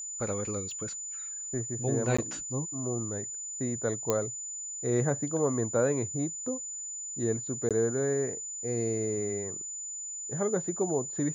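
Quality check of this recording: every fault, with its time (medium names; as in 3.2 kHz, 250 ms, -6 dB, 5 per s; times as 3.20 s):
whine 7 kHz -36 dBFS
0.71 s: pop -31 dBFS
2.17–2.19 s: dropout 15 ms
4.10 s: pop -12 dBFS
7.69–7.71 s: dropout 17 ms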